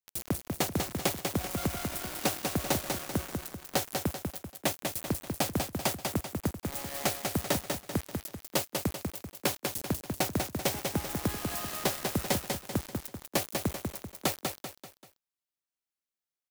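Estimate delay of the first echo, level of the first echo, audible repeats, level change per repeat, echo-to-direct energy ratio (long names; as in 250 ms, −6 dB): 194 ms, −4.5 dB, 4, −7.5 dB, −3.5 dB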